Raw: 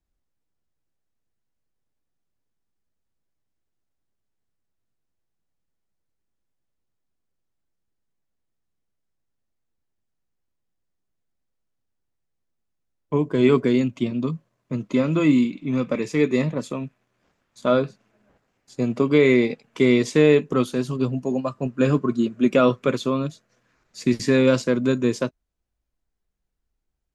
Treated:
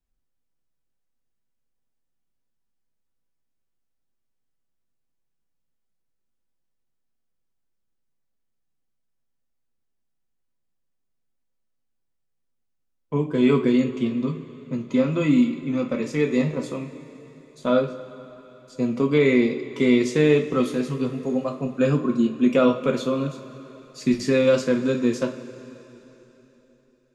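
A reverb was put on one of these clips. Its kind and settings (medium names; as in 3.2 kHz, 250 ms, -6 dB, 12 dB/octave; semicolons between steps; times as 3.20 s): two-slope reverb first 0.29 s, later 3.7 s, from -18 dB, DRR 3 dB; trim -3.5 dB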